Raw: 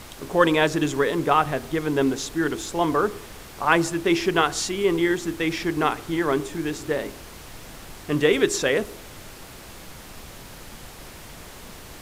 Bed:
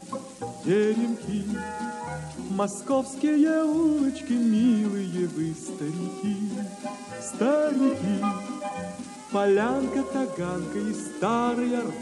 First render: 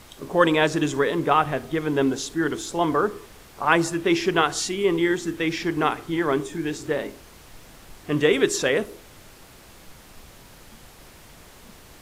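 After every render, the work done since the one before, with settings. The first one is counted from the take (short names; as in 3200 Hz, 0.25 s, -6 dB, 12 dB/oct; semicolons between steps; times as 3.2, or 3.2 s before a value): noise print and reduce 6 dB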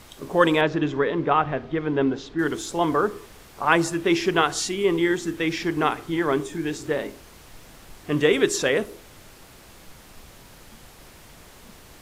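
0.61–2.39 air absorption 230 m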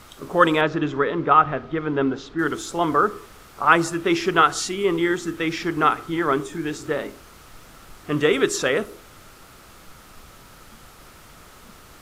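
bell 1300 Hz +10 dB 0.29 oct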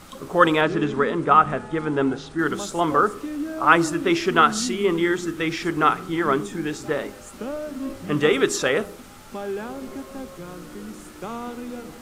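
add bed -8.5 dB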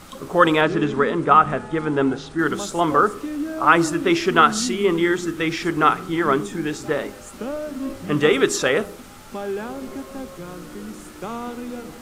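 gain +2 dB; limiter -2 dBFS, peak gain reduction 2.5 dB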